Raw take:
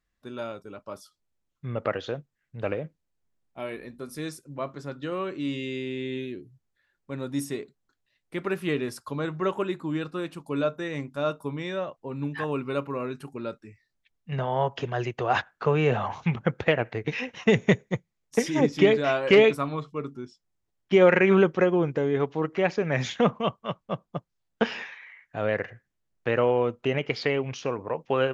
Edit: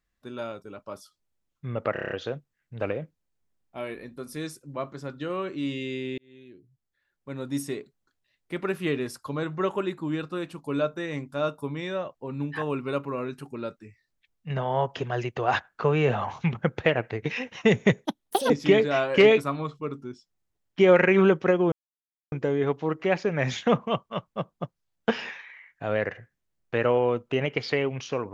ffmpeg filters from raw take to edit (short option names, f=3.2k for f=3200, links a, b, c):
-filter_complex "[0:a]asplit=11[a][b][c][d][e][f][g][h][i][j][k];[a]atrim=end=1.962[l];[b]atrim=start=1.928:end=1.962[m];[c]atrim=start=1.928:end=1.962[n];[d]atrim=start=1.928:end=1.962[o];[e]atrim=start=1.928:end=1.962[p];[f]atrim=start=1.928:end=1.962[q];[g]atrim=start=1.928:end=6,asetpts=PTS-STARTPTS,afade=t=out:st=4.068:d=0.004:c=hsin[r];[h]atrim=start=6:end=17.874,asetpts=PTS-STARTPTS,afade=t=in:d=1.41[s];[i]atrim=start=17.87:end=18.63,asetpts=PTS-STARTPTS,asetrate=74529,aresample=44100[t];[j]atrim=start=18.626:end=21.85,asetpts=PTS-STARTPTS,afade=t=out:st=3.22:d=0.004:c=hsin,apad=pad_dur=0.6[u];[k]atrim=start=21.85,asetpts=PTS-STARTPTS,afade=t=in:d=0.004:c=hsin[v];[l][m]acrossfade=d=0.004:c1=hsin:c2=hsin[w];[w][n]acrossfade=d=0.004:c1=hsin:c2=hsin[x];[x][o]acrossfade=d=0.004:c1=hsin:c2=hsin[y];[y][p]acrossfade=d=0.004:c1=hsin:c2=hsin[z];[z][q]acrossfade=d=0.004:c1=hsin:c2=hsin[aa];[r][s]concat=n=2:v=0:a=1[ab];[aa][ab]acrossfade=d=0.004:c1=hsin:c2=hsin[ac];[ac][t]acrossfade=d=0.004:c1=hsin:c2=hsin[ad];[u][v]concat=n=2:v=0:a=1[ae];[ad][ae]acrossfade=d=0.004:c1=hsin:c2=hsin"